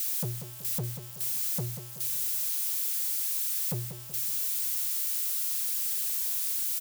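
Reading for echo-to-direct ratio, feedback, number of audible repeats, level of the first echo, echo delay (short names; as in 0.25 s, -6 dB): -8.5 dB, 44%, 4, -9.5 dB, 0.188 s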